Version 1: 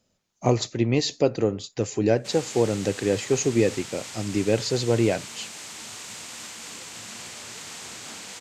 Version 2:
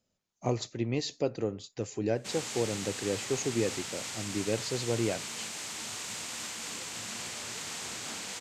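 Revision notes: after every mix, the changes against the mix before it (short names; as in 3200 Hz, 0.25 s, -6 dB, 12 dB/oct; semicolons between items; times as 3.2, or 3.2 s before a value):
speech -9.0 dB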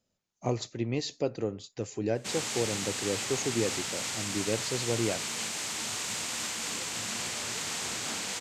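background +4.5 dB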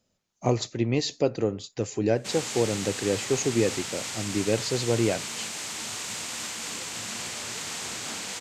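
speech +6.0 dB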